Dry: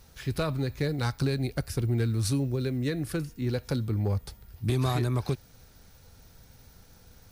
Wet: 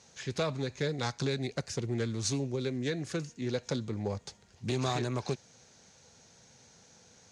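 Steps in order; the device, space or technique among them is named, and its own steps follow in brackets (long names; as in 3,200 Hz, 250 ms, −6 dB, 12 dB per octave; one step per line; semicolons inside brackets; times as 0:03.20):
full-range speaker at full volume (highs frequency-modulated by the lows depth 0.15 ms; loudspeaker in its box 190–7,500 Hz, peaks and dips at 300 Hz −6 dB, 1,300 Hz −5 dB, 6,600 Hz +10 dB)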